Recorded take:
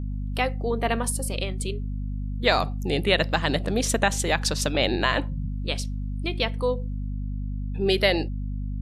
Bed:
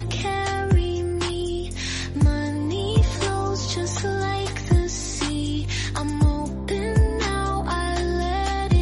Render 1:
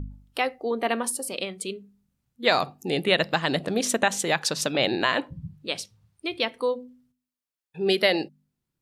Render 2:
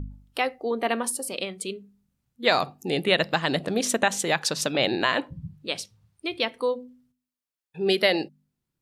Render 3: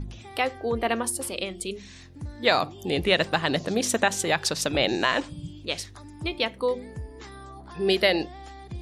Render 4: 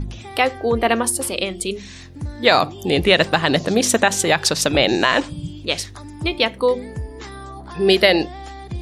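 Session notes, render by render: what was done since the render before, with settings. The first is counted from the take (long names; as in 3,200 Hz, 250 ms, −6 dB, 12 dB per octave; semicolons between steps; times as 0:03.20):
hum removal 50 Hz, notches 5
no processing that can be heard
mix in bed −19 dB
level +8 dB; brickwall limiter −1 dBFS, peak gain reduction 2.5 dB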